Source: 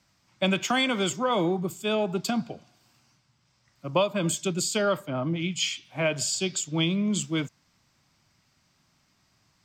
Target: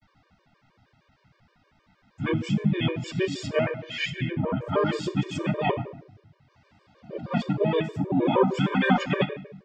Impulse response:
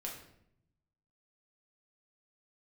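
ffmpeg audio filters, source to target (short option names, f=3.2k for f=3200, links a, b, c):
-filter_complex "[0:a]areverse,lowpass=2.6k,asplit=2[a][b];[b]acompressor=threshold=-38dB:ratio=6,volume=-1dB[c];[a][c]amix=inputs=2:normalize=0,flanger=delay=3.3:depth=5.2:regen=53:speed=0.55:shape=sinusoidal,asplit=2[d][e];[e]asetrate=33038,aresample=44100,atempo=1.33484,volume=0dB[f];[d][f]amix=inputs=2:normalize=0,asplit=2[g][h];[1:a]atrim=start_sample=2205[i];[h][i]afir=irnorm=-1:irlink=0,volume=-0.5dB[j];[g][j]amix=inputs=2:normalize=0,afftfilt=real='re*gt(sin(2*PI*6.4*pts/sr)*(1-2*mod(floor(b*sr/1024/310),2)),0)':imag='im*gt(sin(2*PI*6.4*pts/sr)*(1-2*mod(floor(b*sr/1024/310),2)),0)':win_size=1024:overlap=0.75,volume=1dB"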